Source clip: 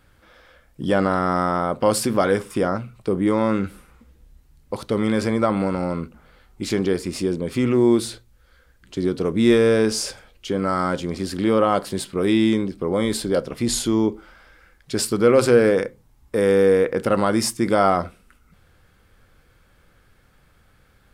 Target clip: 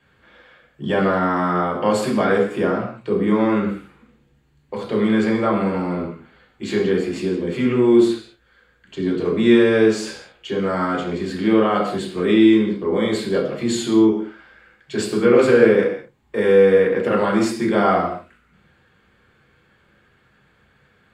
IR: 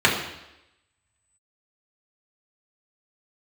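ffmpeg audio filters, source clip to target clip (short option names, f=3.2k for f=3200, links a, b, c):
-filter_complex "[0:a]equalizer=f=98:t=o:w=0.97:g=-8[a];[1:a]atrim=start_sample=2205,afade=t=out:st=0.27:d=0.01,atrim=end_sample=12348[b];[a][b]afir=irnorm=-1:irlink=0,volume=-18dB"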